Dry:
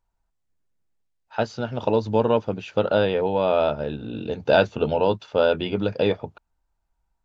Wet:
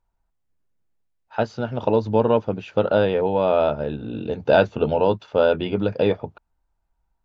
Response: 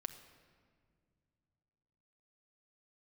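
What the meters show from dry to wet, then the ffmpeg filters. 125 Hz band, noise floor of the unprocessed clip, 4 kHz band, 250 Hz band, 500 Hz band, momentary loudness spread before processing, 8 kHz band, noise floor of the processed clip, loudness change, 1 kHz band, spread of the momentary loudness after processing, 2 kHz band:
+2.0 dB, -75 dBFS, -2.5 dB, +2.0 dB, +2.0 dB, 10 LU, n/a, -73 dBFS, +1.5 dB, +1.5 dB, 10 LU, 0.0 dB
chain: -af "highshelf=f=3k:g=-8,volume=2dB"

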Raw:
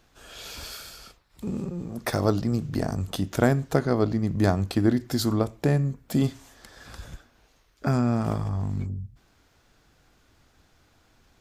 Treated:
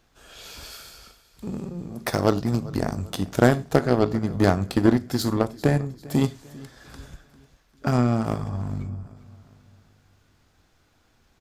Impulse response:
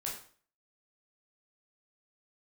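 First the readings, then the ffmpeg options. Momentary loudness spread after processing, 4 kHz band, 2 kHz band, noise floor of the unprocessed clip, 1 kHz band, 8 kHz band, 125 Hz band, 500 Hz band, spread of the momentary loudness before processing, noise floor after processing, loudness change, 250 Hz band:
20 LU, +1.0 dB, +3.5 dB, -63 dBFS, +3.5 dB, +1.0 dB, +0.5 dB, +3.5 dB, 18 LU, -63 dBFS, +2.5 dB, +2.0 dB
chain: -filter_complex "[0:a]aecho=1:1:397|794|1191|1588:0.15|0.0673|0.0303|0.0136,asplit=2[a][b];[1:a]atrim=start_sample=2205,afade=t=out:st=0.15:d=0.01,atrim=end_sample=7056[c];[b][c]afir=irnorm=-1:irlink=0,volume=-9dB[d];[a][d]amix=inputs=2:normalize=0,aeval=exprs='0.531*(cos(1*acos(clip(val(0)/0.531,-1,1)))-cos(1*PI/2))+0.0376*(cos(7*acos(clip(val(0)/0.531,-1,1)))-cos(7*PI/2))':c=same,volume=2dB"

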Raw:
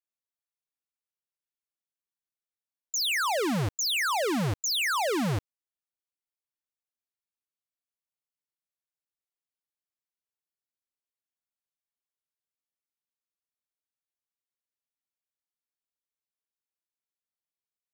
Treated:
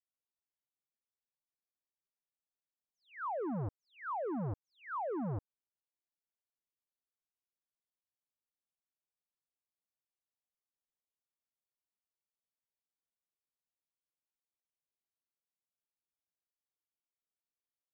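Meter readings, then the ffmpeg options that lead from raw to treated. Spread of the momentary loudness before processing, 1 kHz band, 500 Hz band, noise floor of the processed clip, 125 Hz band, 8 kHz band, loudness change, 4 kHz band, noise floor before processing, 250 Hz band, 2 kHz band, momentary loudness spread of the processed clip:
4 LU, -9.5 dB, -9.0 dB, under -85 dBFS, -9.0 dB, under -40 dB, -13.0 dB, under -40 dB, under -85 dBFS, -9.0 dB, -20.5 dB, 8 LU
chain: -af "lowpass=f=1.1k:w=0.5412,lowpass=f=1.1k:w=1.3066,acompressor=threshold=-32dB:ratio=6,volume=-4dB"

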